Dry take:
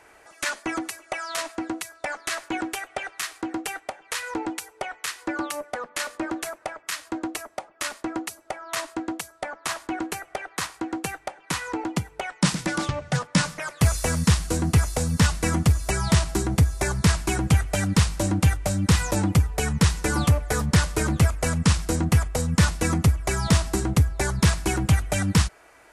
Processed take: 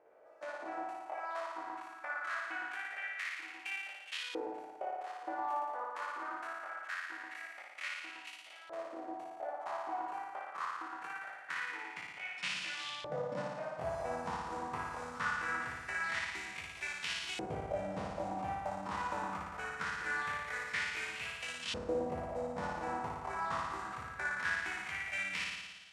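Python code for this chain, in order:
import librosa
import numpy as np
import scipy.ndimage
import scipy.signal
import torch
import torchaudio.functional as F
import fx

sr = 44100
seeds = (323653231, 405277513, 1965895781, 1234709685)

y = fx.spec_steps(x, sr, hold_ms=50)
y = fx.room_flutter(y, sr, wall_m=9.8, rt60_s=1.3)
y = fx.filter_lfo_bandpass(y, sr, shape='saw_up', hz=0.23, low_hz=500.0, high_hz=3200.0, q=3.2)
y = y * librosa.db_to_amplitude(-2.0)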